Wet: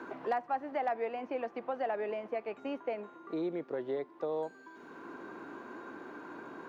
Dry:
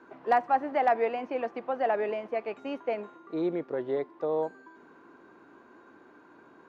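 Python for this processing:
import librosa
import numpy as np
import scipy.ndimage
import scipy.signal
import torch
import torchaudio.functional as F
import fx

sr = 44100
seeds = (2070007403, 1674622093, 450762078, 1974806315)

y = fx.band_squash(x, sr, depth_pct=70)
y = y * 10.0 ** (-6.0 / 20.0)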